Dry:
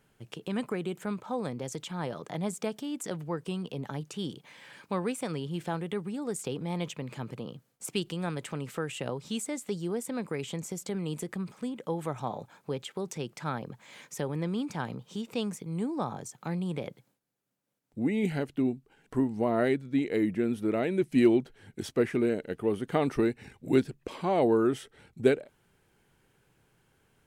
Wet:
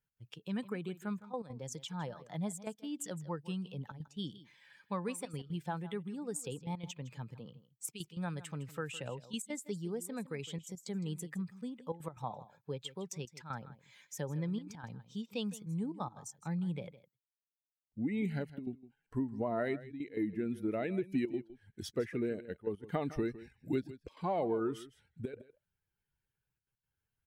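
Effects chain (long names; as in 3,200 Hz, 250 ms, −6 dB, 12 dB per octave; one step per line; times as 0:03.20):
spectral dynamics exaggerated over time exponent 1.5
downward compressor 4 to 1, threshold −31 dBFS, peak gain reduction 11 dB
gate pattern "x.xxxxxxxxxxxxx." 180 BPM −12 dB
on a send: single-tap delay 160 ms −16.5 dB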